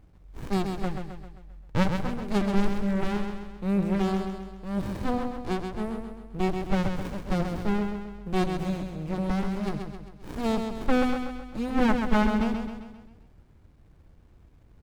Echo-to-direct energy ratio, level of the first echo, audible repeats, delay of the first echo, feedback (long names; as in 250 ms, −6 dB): −4.5 dB, −6.0 dB, 5, 132 ms, 51%